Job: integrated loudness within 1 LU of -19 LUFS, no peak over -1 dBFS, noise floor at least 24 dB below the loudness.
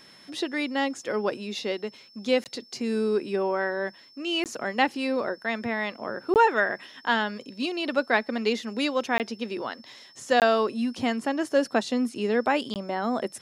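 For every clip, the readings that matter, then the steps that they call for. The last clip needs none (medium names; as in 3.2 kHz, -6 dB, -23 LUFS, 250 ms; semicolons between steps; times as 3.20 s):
dropouts 6; longest dropout 18 ms; steady tone 5.3 kHz; tone level -52 dBFS; loudness -27.0 LUFS; peak level -7.5 dBFS; loudness target -19.0 LUFS
-> interpolate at 2.44/4.44/6.34/9.18/10.40/12.74 s, 18 ms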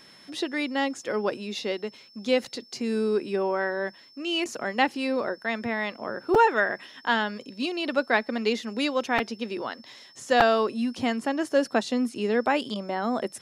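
dropouts 0; steady tone 5.3 kHz; tone level -52 dBFS
-> band-stop 5.3 kHz, Q 30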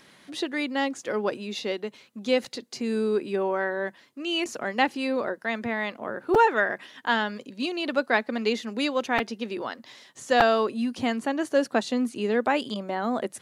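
steady tone not found; loudness -27.0 LUFS; peak level -4.5 dBFS; loudness target -19.0 LUFS
-> trim +8 dB; peak limiter -1 dBFS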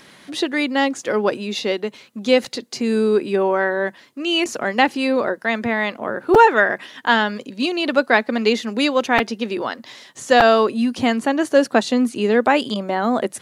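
loudness -19.0 LUFS; peak level -1.0 dBFS; noise floor -48 dBFS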